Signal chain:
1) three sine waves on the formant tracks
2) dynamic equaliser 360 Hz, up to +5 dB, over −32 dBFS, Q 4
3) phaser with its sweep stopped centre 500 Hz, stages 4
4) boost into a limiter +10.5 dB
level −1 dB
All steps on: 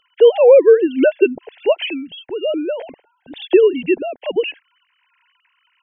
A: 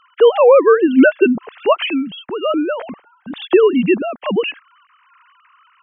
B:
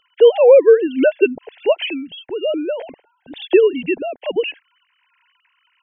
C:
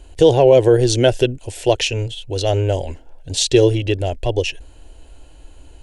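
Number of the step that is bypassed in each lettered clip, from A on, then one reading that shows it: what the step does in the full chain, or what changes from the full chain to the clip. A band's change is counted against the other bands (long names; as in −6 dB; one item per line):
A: 3, 500 Hz band −7.0 dB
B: 2, 250 Hz band −1.5 dB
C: 1, 1 kHz band +6.0 dB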